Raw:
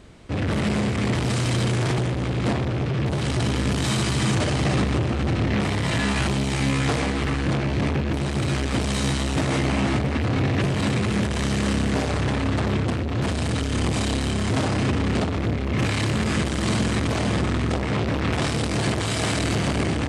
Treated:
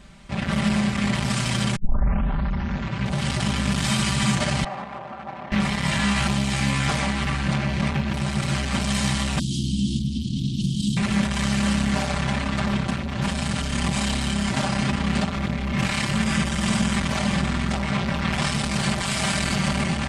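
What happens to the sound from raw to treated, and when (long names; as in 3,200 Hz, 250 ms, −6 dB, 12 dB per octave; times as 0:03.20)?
0:01.76: tape start 1.39 s
0:04.64–0:05.52: resonant band-pass 810 Hz, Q 1.8
0:09.39–0:10.97: Chebyshev band-stop filter 330–3,100 Hz, order 5
0:16.22–0:16.93: notch filter 4,200 Hz
whole clip: parametric band 400 Hz −13.5 dB 0.78 octaves; comb filter 5.1 ms, depth 89%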